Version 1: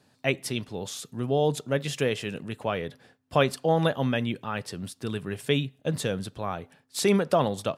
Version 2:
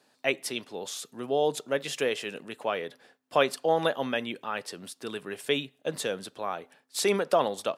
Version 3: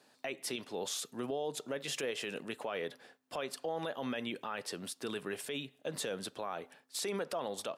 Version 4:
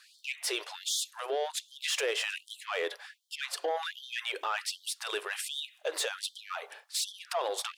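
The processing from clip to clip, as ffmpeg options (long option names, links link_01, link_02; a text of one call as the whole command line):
ffmpeg -i in.wav -af "highpass=340" out.wav
ffmpeg -i in.wav -af "acompressor=threshold=-30dB:ratio=6,alimiter=level_in=3.5dB:limit=-24dB:level=0:latency=1:release=20,volume=-3.5dB" out.wav
ffmpeg -i in.wav -filter_complex "[0:a]asplit=2[link_01][link_02];[link_02]highpass=frequency=720:poles=1,volume=11dB,asoftclip=type=tanh:threshold=-27dB[link_03];[link_01][link_03]amix=inputs=2:normalize=0,lowpass=frequency=7300:poles=1,volume=-6dB,afftfilt=real='re*gte(b*sr/1024,300*pow(3100/300,0.5+0.5*sin(2*PI*1.3*pts/sr)))':imag='im*gte(b*sr/1024,300*pow(3100/300,0.5+0.5*sin(2*PI*1.3*pts/sr)))':win_size=1024:overlap=0.75,volume=5dB" out.wav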